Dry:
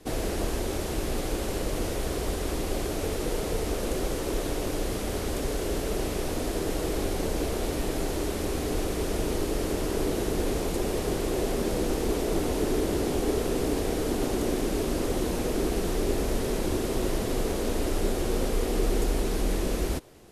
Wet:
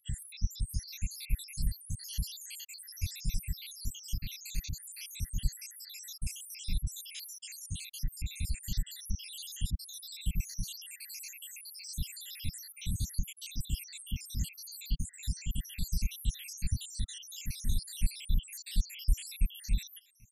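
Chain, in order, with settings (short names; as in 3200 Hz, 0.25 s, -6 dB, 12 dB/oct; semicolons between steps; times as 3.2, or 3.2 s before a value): random spectral dropouts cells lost 83%; inverse Chebyshev band-stop 390–1100 Hz, stop band 60 dB; gain +3.5 dB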